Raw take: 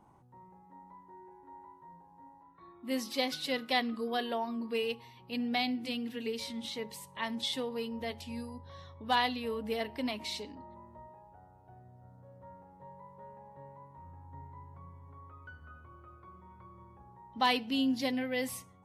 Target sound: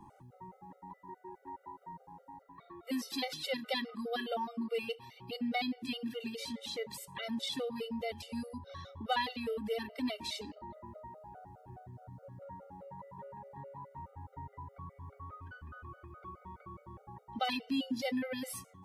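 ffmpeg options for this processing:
ffmpeg -i in.wav -filter_complex "[0:a]acrossover=split=130[link_01][link_02];[link_01]alimiter=level_in=28.5dB:limit=-24dB:level=0:latency=1:release=19,volume=-28.5dB[link_03];[link_03][link_02]amix=inputs=2:normalize=0,acompressor=threshold=-54dB:ratio=1.5,afftfilt=real='re*gt(sin(2*PI*4.8*pts/sr)*(1-2*mod(floor(b*sr/1024/390),2)),0)':imag='im*gt(sin(2*PI*4.8*pts/sr)*(1-2*mod(floor(b*sr/1024/390),2)),0)':win_size=1024:overlap=0.75,volume=8.5dB" out.wav

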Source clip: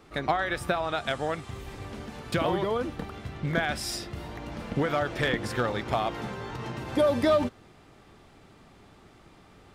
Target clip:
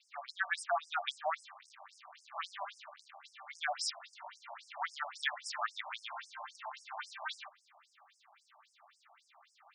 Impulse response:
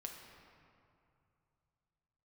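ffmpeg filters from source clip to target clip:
-filter_complex "[0:a]asettb=1/sr,asplit=3[link_01][link_02][link_03];[link_01]atrim=end=1.524[link_04];[link_02]atrim=start=1.52:end=3.25,asetpts=PTS-STARTPTS,afade=type=in:duration=0.004:curve=qsin,afade=type=out:start_time=1.726:duration=0.004:curve=qsin,aeval=exprs='max(val(0),0)':channel_layout=same[link_05];[link_03]atrim=start=3.246[link_06];[link_04][link_05]acrossfade=duration=0.004:curve1=hsin:curve2=qsin[link_07];[link_07][link_06]acrossfade=duration=0.004:curve1=qsin:curve2=hsin,afftfilt=real='re*between(b*sr/1024,810*pow(7100/810,0.5+0.5*sin(2*PI*3.7*pts/sr))/1.41,810*pow(7100/810,0.5+0.5*sin(2*PI*3.7*pts/sr))*1.41)':imag='im*between(b*sr/1024,810*pow(7100/810,0.5+0.5*sin(2*PI*3.7*pts/sr))/1.41,810*pow(7100/810,0.5+0.5*sin(2*PI*3.7*pts/sr))*1.41)':win_size=1024:overlap=0.75"

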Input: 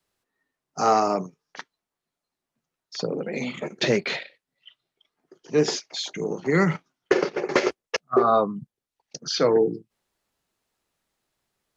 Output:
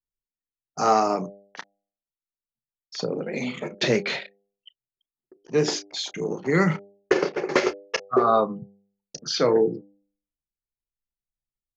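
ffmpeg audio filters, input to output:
ffmpeg -i in.wav -filter_complex "[0:a]asplit=2[link_01][link_02];[link_02]adelay=32,volume=-13.5dB[link_03];[link_01][link_03]amix=inputs=2:normalize=0,anlmdn=0.0251,bandreject=frequency=99.89:width_type=h:width=4,bandreject=frequency=199.78:width_type=h:width=4,bandreject=frequency=299.67:width_type=h:width=4,bandreject=frequency=399.56:width_type=h:width=4,bandreject=frequency=499.45:width_type=h:width=4,bandreject=frequency=599.34:width_type=h:width=4,bandreject=frequency=699.23:width_type=h:width=4,bandreject=frequency=799.12:width_type=h:width=4" out.wav

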